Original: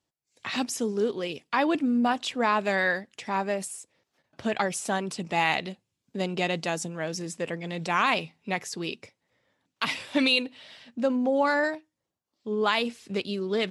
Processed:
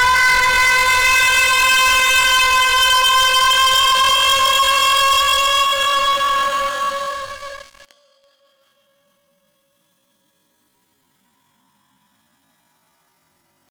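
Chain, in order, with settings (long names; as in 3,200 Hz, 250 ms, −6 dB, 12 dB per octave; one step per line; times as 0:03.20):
in parallel at −7.5 dB: gain into a clipping stage and back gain 26 dB
on the sum: extreme stretch with random phases 20×, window 0.10 s, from 0:11.42
leveller curve on the samples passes 5
reversed playback
upward compression, threshold −35 dBFS
reversed playback
pitch shifter +10 semitones
parametric band 480 Hz −15 dB 0.52 octaves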